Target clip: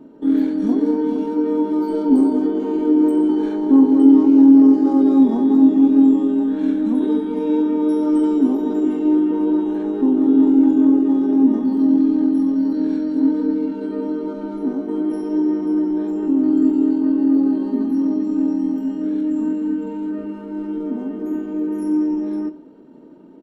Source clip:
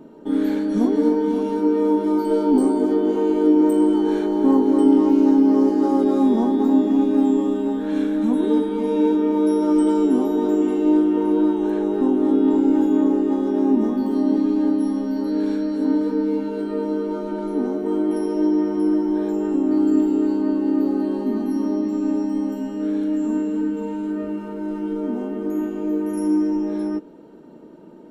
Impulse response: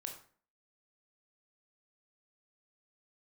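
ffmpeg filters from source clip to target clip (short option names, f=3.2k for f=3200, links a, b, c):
-filter_complex "[0:a]equalizer=f=270:t=o:w=0.21:g=9,atempo=1.2,asplit=2[a][b];[1:a]atrim=start_sample=2205,lowpass=6.4k[c];[b][c]afir=irnorm=-1:irlink=0,volume=-1.5dB[d];[a][d]amix=inputs=2:normalize=0,volume=-6.5dB"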